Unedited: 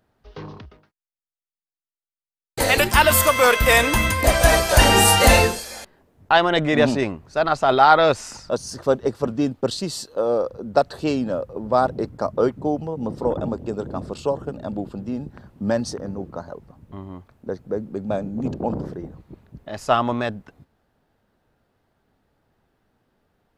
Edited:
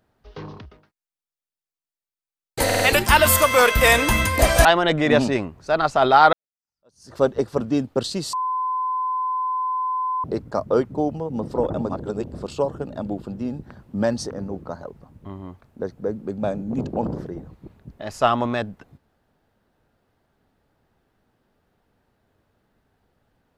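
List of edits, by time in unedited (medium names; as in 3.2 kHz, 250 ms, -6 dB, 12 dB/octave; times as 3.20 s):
2.65 s: stutter 0.05 s, 4 plays
4.50–6.32 s: delete
8.00–8.84 s: fade in exponential
10.00–11.91 s: bleep 1.02 kHz -21 dBFS
13.56–14.01 s: reverse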